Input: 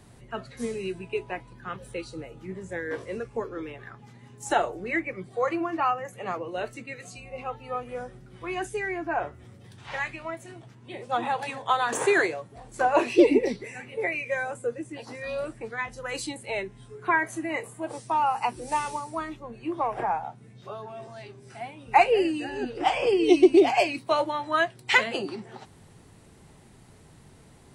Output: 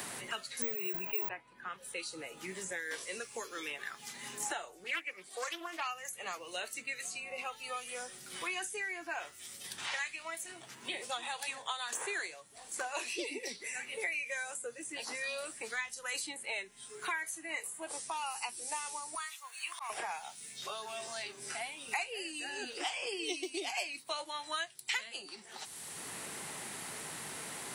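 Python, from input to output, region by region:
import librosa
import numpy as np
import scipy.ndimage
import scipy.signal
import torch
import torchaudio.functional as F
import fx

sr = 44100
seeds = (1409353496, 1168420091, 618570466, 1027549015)

y = fx.chain(x, sr, fx.resample_bad(factor=2, down='none', up='zero_stuff'),
    fx.sustainer(db_per_s=45.0), at=(0.62, 1.29))
y = fx.chain(y, sr, fx.highpass(hz=290.0, slope=12),
    fx.doppler_dist(depth_ms=0.26), at=(4.84, 5.87))
y = fx.chain(y, sr, fx.highpass(hz=1000.0, slope=24),
    fx.high_shelf(hz=9100.0, db=11.5),
    fx.auto_swell(attack_ms=163.0), at=(19.15, 19.9))
y = F.preemphasis(torch.from_numpy(y), 0.97).numpy()
y = fx.hum_notches(y, sr, base_hz=60, count=2)
y = fx.band_squash(y, sr, depth_pct=100)
y = y * librosa.db_to_amplitude(4.0)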